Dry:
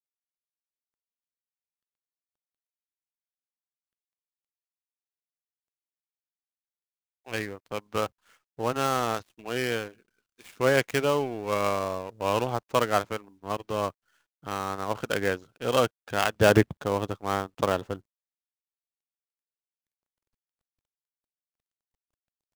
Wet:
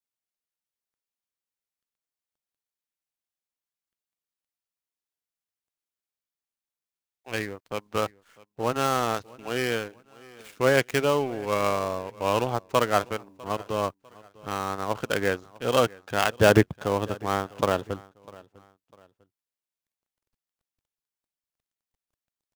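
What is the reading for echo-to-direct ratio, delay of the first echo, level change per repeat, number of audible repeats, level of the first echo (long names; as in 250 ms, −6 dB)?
−22.0 dB, 650 ms, −9.0 dB, 2, −22.5 dB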